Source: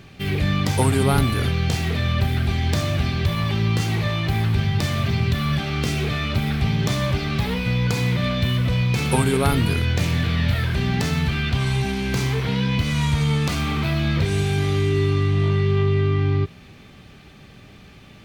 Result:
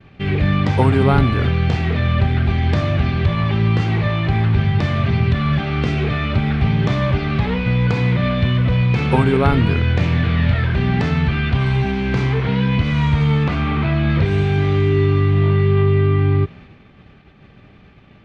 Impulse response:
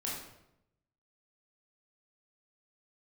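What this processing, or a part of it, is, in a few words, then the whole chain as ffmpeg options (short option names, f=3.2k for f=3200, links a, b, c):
hearing-loss simulation: -filter_complex "[0:a]lowpass=2.5k,agate=range=-33dB:threshold=-40dB:ratio=3:detection=peak,asettb=1/sr,asplit=3[a][b][c];[a]atrim=end=13.444[d];[b]atrim=start=13.44:end=14.1,asetpts=PTS-STARTPTS,afade=t=in:d=0.004:c=qsin,afade=t=out:st=0.656:d=0.004:c=qsin,acrossover=split=3800[e][f];[f]acompressor=threshold=-51dB:ratio=4:attack=1:release=60[g];[e][g]amix=inputs=2:normalize=0[h];[c]atrim=start=14.096[i];[d][h]acrossfade=d=0.004:c1=hsin:c2=qsin[j];[j][i]acrossfade=d=0.004:c1=qsin:c2=hsin,volume=4.5dB"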